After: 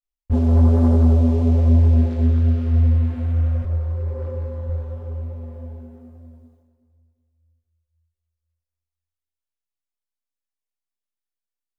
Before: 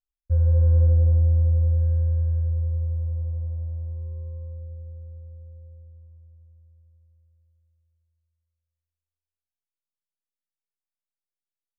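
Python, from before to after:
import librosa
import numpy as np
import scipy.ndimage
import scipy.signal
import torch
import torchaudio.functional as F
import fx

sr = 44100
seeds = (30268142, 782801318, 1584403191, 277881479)

p1 = fx.low_shelf(x, sr, hz=100.0, db=-7.0, at=(3.62, 4.67))
p2 = fx.leveller(p1, sr, passes=3)
p3 = fx.chorus_voices(p2, sr, voices=6, hz=0.98, base_ms=25, depth_ms=4.5, mix_pct=65)
p4 = p3 + fx.echo_feedback(p3, sr, ms=373, feedback_pct=32, wet_db=-15.5, dry=0)
y = F.gain(torch.from_numpy(p4), 5.5).numpy()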